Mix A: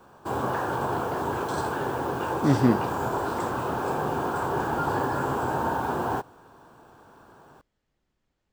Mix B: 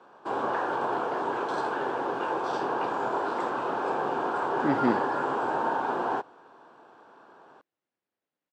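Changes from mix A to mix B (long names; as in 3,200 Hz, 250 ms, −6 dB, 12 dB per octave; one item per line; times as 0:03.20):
speech: entry +2.20 s
master: add band-pass filter 310–4,000 Hz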